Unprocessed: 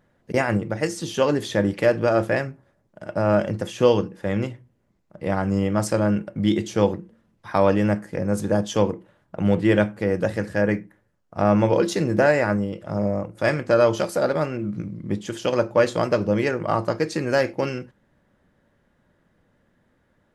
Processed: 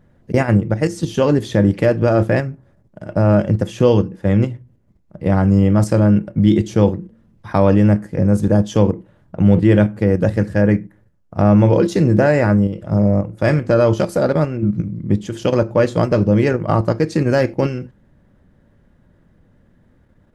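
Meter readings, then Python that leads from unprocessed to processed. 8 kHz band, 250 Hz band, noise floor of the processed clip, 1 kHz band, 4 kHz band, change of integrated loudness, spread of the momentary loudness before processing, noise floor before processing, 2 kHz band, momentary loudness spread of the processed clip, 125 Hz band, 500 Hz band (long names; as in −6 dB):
can't be measured, +8.0 dB, −55 dBFS, +2.0 dB, 0.0 dB, +6.5 dB, 10 LU, −66 dBFS, +1.0 dB, 7 LU, +11.5 dB, +4.0 dB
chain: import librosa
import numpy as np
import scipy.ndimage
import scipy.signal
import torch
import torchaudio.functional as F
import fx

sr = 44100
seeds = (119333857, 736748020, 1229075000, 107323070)

p1 = fx.low_shelf(x, sr, hz=390.0, db=9.5)
p2 = fx.level_steps(p1, sr, step_db=20)
p3 = p1 + (p2 * 10.0 ** (2.0 / 20.0))
p4 = fx.low_shelf(p3, sr, hz=120.0, db=5.0)
y = p4 * 10.0 ** (-4.0 / 20.0)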